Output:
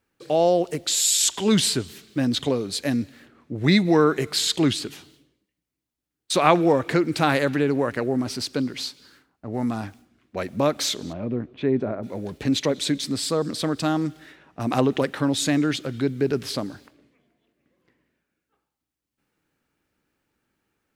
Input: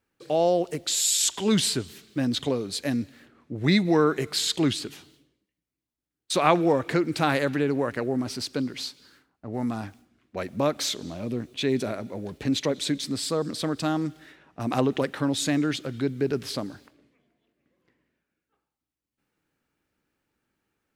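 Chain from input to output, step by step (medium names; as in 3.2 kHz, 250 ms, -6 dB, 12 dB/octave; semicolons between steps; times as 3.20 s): 11.12–12.02 s: low-pass 2 kHz -> 1.1 kHz 12 dB/octave; trim +3 dB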